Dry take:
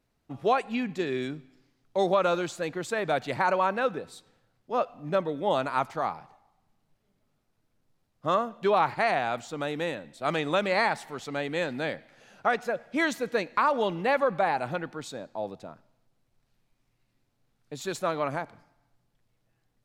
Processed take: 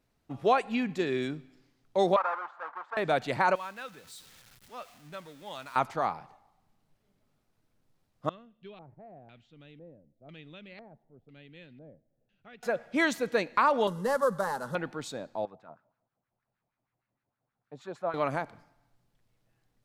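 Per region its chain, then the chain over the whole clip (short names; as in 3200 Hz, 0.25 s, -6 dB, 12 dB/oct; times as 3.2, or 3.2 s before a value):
2.16–2.97 half-waves squared off + Butterworth band-pass 1100 Hz, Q 1.8
3.55–5.76 zero-crossing step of -39.5 dBFS + passive tone stack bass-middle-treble 5-5-5
8.29–12.63 passive tone stack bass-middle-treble 10-0-1 + LFO low-pass square 1 Hz 640–3000 Hz
13.87–14.75 CVSD 64 kbps + fixed phaser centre 480 Hz, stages 8
15.45–18.14 tone controls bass +15 dB, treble +1 dB + LFO band-pass sine 6.4 Hz 630–1600 Hz
whole clip: dry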